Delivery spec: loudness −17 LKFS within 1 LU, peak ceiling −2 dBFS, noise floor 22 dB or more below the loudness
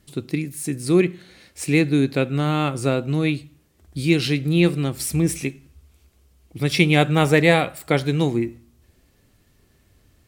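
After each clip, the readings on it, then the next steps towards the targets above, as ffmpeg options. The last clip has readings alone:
integrated loudness −21.0 LKFS; sample peak −1.0 dBFS; target loudness −17.0 LKFS
→ -af "volume=4dB,alimiter=limit=-2dB:level=0:latency=1"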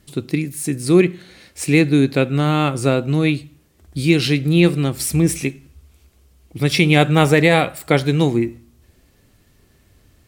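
integrated loudness −17.5 LKFS; sample peak −2.0 dBFS; background noise floor −56 dBFS

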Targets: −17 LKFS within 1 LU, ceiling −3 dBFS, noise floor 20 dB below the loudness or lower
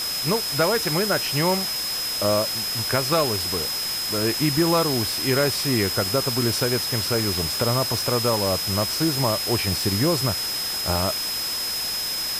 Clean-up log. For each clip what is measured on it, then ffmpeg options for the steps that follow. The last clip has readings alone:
interfering tone 5,100 Hz; level of the tone −26 dBFS; background noise floor −27 dBFS; target noise floor −42 dBFS; integrated loudness −21.5 LKFS; sample peak −7.5 dBFS; target loudness −17.0 LKFS
→ -af "bandreject=frequency=5100:width=30"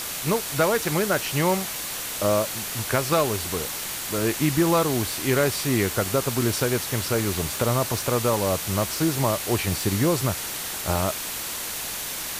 interfering tone none found; background noise floor −32 dBFS; target noise floor −44 dBFS
→ -af "afftdn=noise_reduction=12:noise_floor=-32"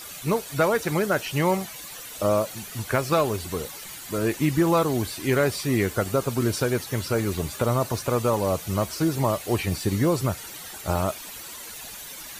background noise floor −40 dBFS; target noise floor −45 dBFS
→ -af "afftdn=noise_reduction=6:noise_floor=-40"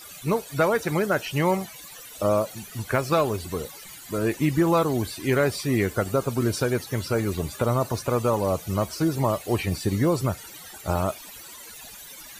background noise floor −43 dBFS; target noise floor −45 dBFS
→ -af "afftdn=noise_reduction=6:noise_floor=-43"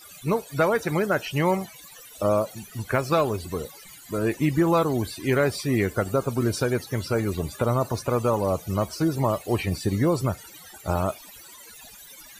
background noise floor −47 dBFS; integrated loudness −25.0 LKFS; sample peak −9.0 dBFS; target loudness −17.0 LKFS
→ -af "volume=8dB,alimiter=limit=-3dB:level=0:latency=1"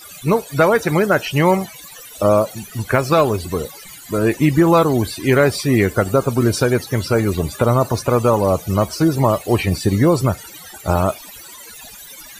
integrated loudness −17.0 LKFS; sample peak −3.0 dBFS; background noise floor −39 dBFS

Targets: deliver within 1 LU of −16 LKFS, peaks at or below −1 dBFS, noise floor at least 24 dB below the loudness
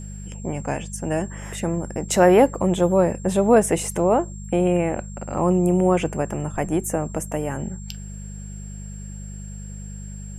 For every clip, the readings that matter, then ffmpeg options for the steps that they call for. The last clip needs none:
mains hum 50 Hz; hum harmonics up to 200 Hz; level of the hum −33 dBFS; interfering tone 7,500 Hz; level of the tone −43 dBFS; integrated loudness −21.5 LKFS; sample peak −2.5 dBFS; target loudness −16.0 LKFS
→ -af "bandreject=frequency=50:width_type=h:width=4,bandreject=frequency=100:width_type=h:width=4,bandreject=frequency=150:width_type=h:width=4,bandreject=frequency=200:width_type=h:width=4"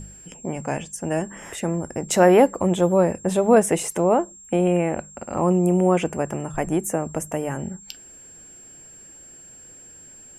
mains hum none found; interfering tone 7,500 Hz; level of the tone −43 dBFS
→ -af "bandreject=frequency=7500:width=30"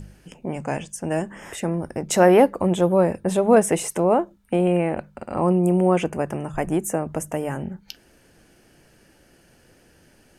interfering tone none found; integrated loudness −21.5 LKFS; sample peak −3.0 dBFS; target loudness −16.0 LKFS
→ -af "volume=5.5dB,alimiter=limit=-1dB:level=0:latency=1"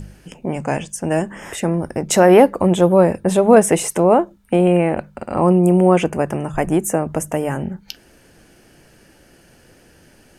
integrated loudness −16.5 LKFS; sample peak −1.0 dBFS; background noise floor −51 dBFS

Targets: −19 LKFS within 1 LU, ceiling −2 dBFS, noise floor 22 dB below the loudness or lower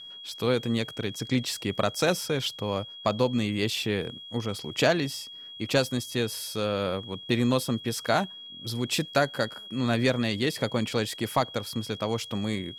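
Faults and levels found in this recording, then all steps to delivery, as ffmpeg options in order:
interfering tone 3,300 Hz; level of the tone −41 dBFS; integrated loudness −28.0 LKFS; sample peak −12.0 dBFS; target loudness −19.0 LKFS
→ -af "bandreject=frequency=3300:width=30"
-af "volume=9dB"

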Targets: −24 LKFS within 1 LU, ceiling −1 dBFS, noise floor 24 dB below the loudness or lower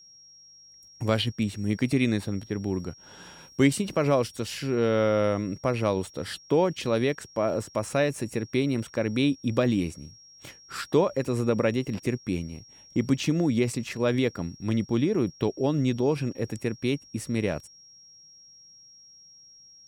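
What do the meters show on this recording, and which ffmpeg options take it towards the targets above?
interfering tone 5,600 Hz; level of the tone −50 dBFS; integrated loudness −27.0 LKFS; sample peak −7.5 dBFS; target loudness −24.0 LKFS
→ -af "bandreject=frequency=5600:width=30"
-af "volume=3dB"

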